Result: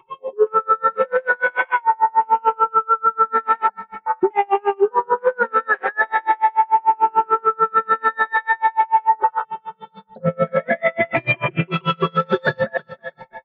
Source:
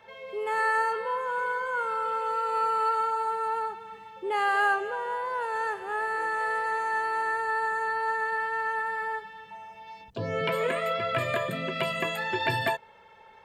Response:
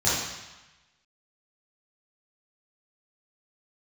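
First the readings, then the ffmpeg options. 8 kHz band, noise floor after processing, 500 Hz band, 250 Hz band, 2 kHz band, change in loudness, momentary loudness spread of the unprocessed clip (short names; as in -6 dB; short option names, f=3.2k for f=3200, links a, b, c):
n/a, -57 dBFS, +10.0 dB, +12.5 dB, +6.5 dB, +9.5 dB, 11 LU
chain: -af "afftfilt=real='re*pow(10,24/40*sin(2*PI*(0.68*log(max(b,1)*sr/1024/100)/log(2)-(0.43)*(pts-256)/sr)))':imag='im*pow(10,24/40*sin(2*PI*(0.68*log(max(b,1)*sr/1024/100)/log(2)-(0.43)*(pts-256)/sr)))':win_size=1024:overlap=0.75,afwtdn=0.0282,lowpass=1.6k,equalizer=f=86:w=4.9:g=-13.5,aecho=1:1:5.4:0.75,areverse,acompressor=threshold=-32dB:ratio=10,areverse,aecho=1:1:324|648|972:0.0794|0.0365|0.0168,alimiter=level_in=32.5dB:limit=-1dB:release=50:level=0:latency=1,aeval=exprs='val(0)*pow(10,-36*(0.5-0.5*cos(2*PI*6.8*n/s))/20)':c=same,volume=-5dB"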